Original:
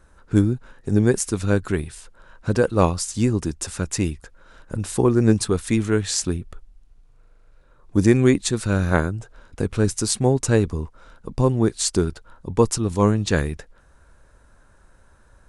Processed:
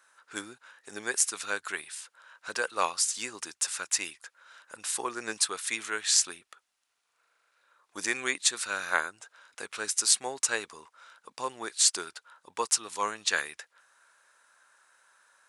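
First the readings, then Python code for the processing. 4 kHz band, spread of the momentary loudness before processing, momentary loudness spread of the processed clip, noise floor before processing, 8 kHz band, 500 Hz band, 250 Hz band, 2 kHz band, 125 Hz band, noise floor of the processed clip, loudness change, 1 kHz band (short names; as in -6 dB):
+1.0 dB, 13 LU, 18 LU, -54 dBFS, +1.0 dB, -17.5 dB, -26.0 dB, -0.5 dB, under -35 dB, -78 dBFS, -7.5 dB, -5.0 dB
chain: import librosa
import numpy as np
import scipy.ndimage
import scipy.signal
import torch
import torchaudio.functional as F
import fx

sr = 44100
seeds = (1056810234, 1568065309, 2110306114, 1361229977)

y = scipy.signal.sosfilt(scipy.signal.butter(2, 1300.0, 'highpass', fs=sr, output='sos'), x)
y = F.gain(torch.from_numpy(y), 1.0).numpy()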